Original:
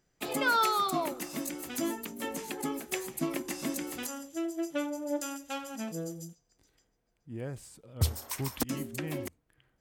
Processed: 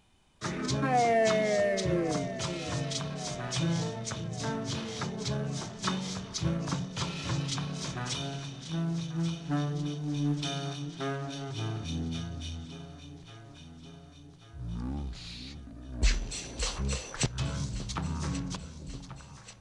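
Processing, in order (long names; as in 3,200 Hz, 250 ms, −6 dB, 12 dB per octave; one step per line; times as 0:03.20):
mu-law and A-law mismatch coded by mu
delay that swaps between a low-pass and a high-pass 284 ms, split 1,300 Hz, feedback 76%, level −11 dB
change of speed 0.5×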